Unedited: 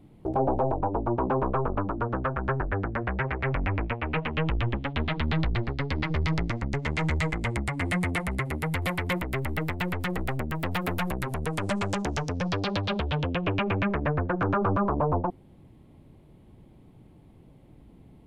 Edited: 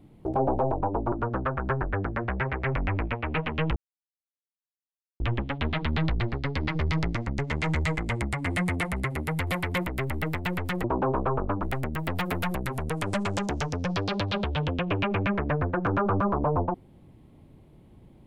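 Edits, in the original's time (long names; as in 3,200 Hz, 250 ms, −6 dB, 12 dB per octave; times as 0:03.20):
0:01.12–0:01.91: move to 0:10.19
0:04.55: splice in silence 1.44 s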